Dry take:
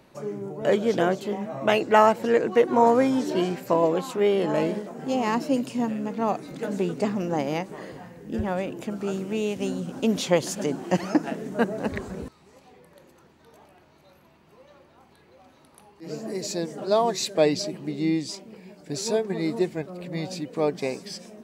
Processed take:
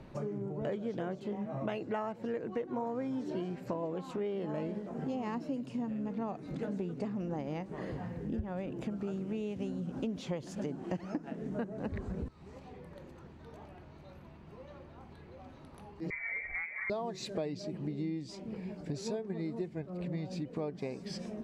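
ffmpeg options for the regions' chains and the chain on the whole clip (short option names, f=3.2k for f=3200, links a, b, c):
-filter_complex "[0:a]asettb=1/sr,asplit=3[a][b][c];[a]atrim=end=16.104[d];[b]atrim=start=16.1:end=16.9,asetpts=PTS-STARTPTS,afade=t=in:d=0.004:c=qsin,afade=t=out:st=0.796:d=0.004:c=qsin,asoftclip=type=hard:threshold=-24dB,lowpass=f=2.1k:t=q:w=0.5098,lowpass=f=2.1k:t=q:w=0.6013,lowpass=f=2.1k:t=q:w=0.9,lowpass=f=2.1k:t=q:w=2.563,afreqshift=-2500[e];[c]atrim=start=16.896[f];[d][e]acrossfade=d=0.004:c1=hsin:c2=qsin[g];[g][f]acrossfade=d=0.004:c1=qsin:c2=hsin,aemphasis=mode=reproduction:type=bsi,acompressor=threshold=-35dB:ratio=6"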